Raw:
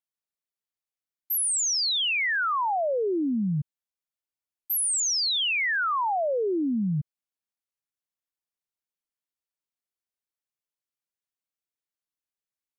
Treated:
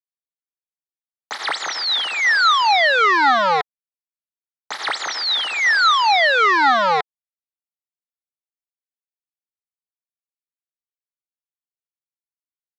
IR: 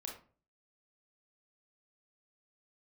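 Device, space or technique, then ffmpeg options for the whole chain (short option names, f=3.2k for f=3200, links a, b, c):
hand-held game console: -af "acrusher=bits=3:mix=0:aa=0.000001,highpass=480,equalizer=f=830:t=q:w=4:g=7,equalizer=f=1.3k:t=q:w=4:g=7,equalizer=f=1.9k:t=q:w=4:g=7,equalizer=f=2.7k:t=q:w=4:g=-9,equalizer=f=3.9k:t=q:w=4:g=5,lowpass=f=4.3k:w=0.5412,lowpass=f=4.3k:w=1.3066,volume=7dB"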